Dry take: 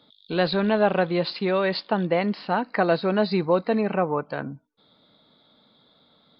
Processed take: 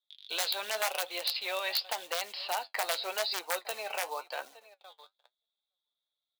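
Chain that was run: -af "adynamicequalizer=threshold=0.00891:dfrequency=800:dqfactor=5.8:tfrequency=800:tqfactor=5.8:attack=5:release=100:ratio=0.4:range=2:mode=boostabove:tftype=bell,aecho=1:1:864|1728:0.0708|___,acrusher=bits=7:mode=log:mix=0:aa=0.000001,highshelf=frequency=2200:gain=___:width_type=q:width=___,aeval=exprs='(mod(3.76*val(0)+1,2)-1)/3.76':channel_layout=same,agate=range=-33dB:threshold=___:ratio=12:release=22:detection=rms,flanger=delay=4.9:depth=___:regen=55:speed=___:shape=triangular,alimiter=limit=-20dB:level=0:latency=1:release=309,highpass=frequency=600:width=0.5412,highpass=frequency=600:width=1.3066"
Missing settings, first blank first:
0.0113, 8, 1.5, -47dB, 6.7, 0.9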